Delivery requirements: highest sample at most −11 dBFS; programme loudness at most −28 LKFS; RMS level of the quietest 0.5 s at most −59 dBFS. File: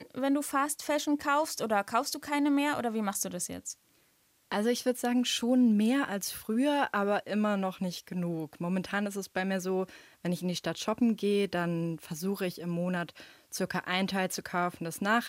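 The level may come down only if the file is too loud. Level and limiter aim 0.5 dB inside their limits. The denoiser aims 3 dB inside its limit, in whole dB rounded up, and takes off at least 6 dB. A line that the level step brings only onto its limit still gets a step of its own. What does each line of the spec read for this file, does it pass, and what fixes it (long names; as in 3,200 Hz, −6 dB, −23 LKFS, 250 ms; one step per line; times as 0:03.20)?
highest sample −13.5 dBFS: in spec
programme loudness −30.5 LKFS: in spec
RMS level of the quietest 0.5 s −68 dBFS: in spec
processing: no processing needed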